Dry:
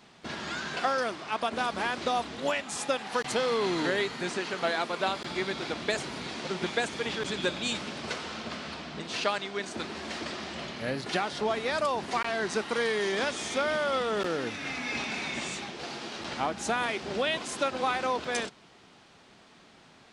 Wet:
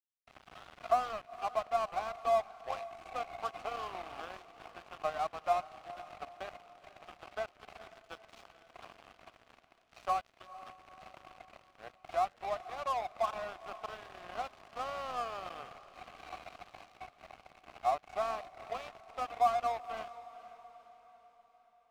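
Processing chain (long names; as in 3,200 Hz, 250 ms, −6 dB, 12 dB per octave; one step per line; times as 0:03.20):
wrong playback speed 48 kHz file played as 44.1 kHz
formant filter a
mains hum 60 Hz, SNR 13 dB
flat-topped bell 1,000 Hz +8.5 dB
dead-zone distortion −38 dBFS
on a send: feedback delay with all-pass diffusion 474 ms, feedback 50%, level −16 dB
on the sum: level −2.5 dB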